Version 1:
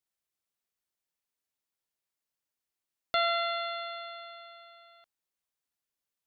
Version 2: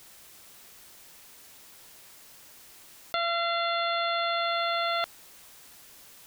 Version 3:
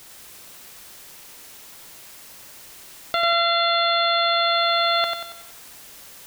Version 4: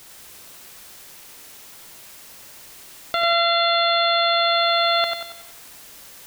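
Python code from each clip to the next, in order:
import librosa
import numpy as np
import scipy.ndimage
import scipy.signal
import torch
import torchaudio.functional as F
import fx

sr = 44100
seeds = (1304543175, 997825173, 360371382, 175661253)

y1 = fx.env_flatten(x, sr, amount_pct=100)
y1 = y1 * librosa.db_to_amplitude(-2.5)
y2 = fx.echo_feedback(y1, sr, ms=93, feedback_pct=45, wet_db=-5)
y2 = y2 * librosa.db_to_amplitude(6.5)
y3 = y2 + 10.0 ** (-11.5 / 20.0) * np.pad(y2, (int(75 * sr / 1000.0), 0))[:len(y2)]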